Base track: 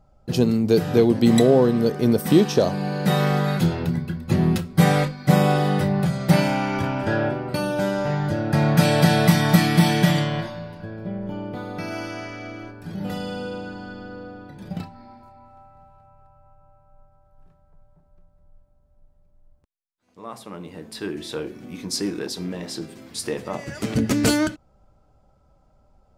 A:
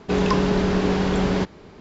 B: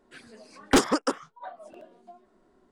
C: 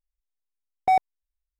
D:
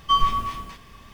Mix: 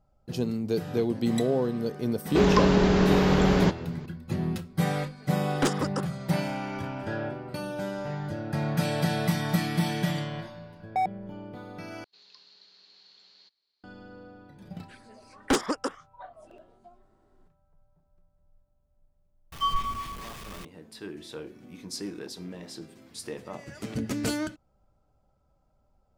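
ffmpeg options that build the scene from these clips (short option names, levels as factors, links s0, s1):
-filter_complex "[1:a]asplit=2[s0][s1];[2:a]asplit=2[s2][s3];[0:a]volume=0.316[s4];[s2]dynaudnorm=f=170:g=3:m=2.82[s5];[s1]bandpass=f=4300:t=q:w=13:csg=0[s6];[4:a]aeval=exprs='val(0)+0.5*0.0316*sgn(val(0))':c=same[s7];[s4]asplit=2[s8][s9];[s8]atrim=end=12.044[s10];[s6]atrim=end=1.8,asetpts=PTS-STARTPTS,volume=0.355[s11];[s9]atrim=start=13.836[s12];[s0]atrim=end=1.8,asetpts=PTS-STARTPTS,volume=0.944,afade=t=in:d=0.004:c=hsin,afade=t=out:st=1.796:d=0.004:c=hsin,adelay=2260[s13];[s5]atrim=end=2.71,asetpts=PTS-STARTPTS,volume=0.178,afade=t=in:d=0.004:c=hsin,afade=t=out:st=2.706:d=0.004:c=hsin,adelay=215649S[s14];[3:a]atrim=end=1.59,asetpts=PTS-STARTPTS,volume=0.447,afade=t=in:d=0.004:c=hsin,afade=t=out:st=1.586:d=0.004:c=hsin,adelay=10080[s15];[s3]atrim=end=2.71,asetpts=PTS-STARTPTS,volume=0.596,afade=t=in:d=0.004:c=hsin,afade=t=out:st=2.706:d=0.004:c=hsin,adelay=14770[s16];[s7]atrim=end=1.13,asetpts=PTS-STARTPTS,volume=0.376,afade=t=in:d=0.004:c=hsin,afade=t=out:st=1.126:d=0.004:c=hsin,adelay=19520[s17];[s10][s11]acrossfade=d=0.004:c1=hsin:c2=hsin[s18];[s18][s12]acrossfade=d=0.004:c1=hsin:c2=hsin[s19];[s19][s13][s14][s15][s16][s17]amix=inputs=6:normalize=0"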